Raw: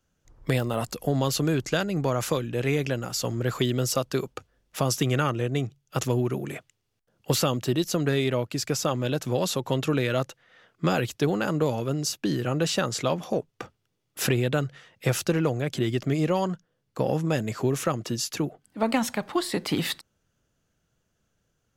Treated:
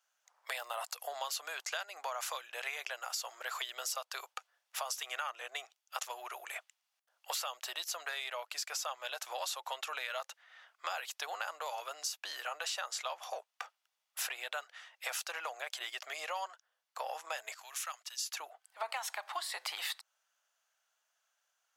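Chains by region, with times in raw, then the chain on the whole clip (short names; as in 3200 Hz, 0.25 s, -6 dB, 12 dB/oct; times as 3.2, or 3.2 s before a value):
17.54–18.26 gate -37 dBFS, range -12 dB + passive tone stack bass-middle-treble 10-0-10
whole clip: steep high-pass 700 Hz 36 dB/oct; compressor 4:1, threshold -35 dBFS; gain -1 dB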